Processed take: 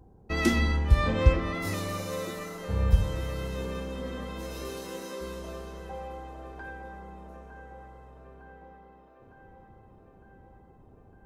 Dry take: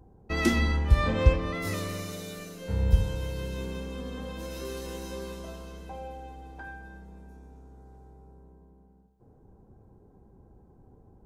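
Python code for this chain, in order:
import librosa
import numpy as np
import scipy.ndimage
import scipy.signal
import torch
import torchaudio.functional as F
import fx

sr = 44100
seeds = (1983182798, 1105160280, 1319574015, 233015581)

p1 = fx.highpass(x, sr, hz=fx.line((4.69, 80.0), (5.2, 320.0)), slope=12, at=(4.69, 5.2), fade=0.02)
y = p1 + fx.echo_wet_bandpass(p1, sr, ms=907, feedback_pct=65, hz=820.0, wet_db=-7.0, dry=0)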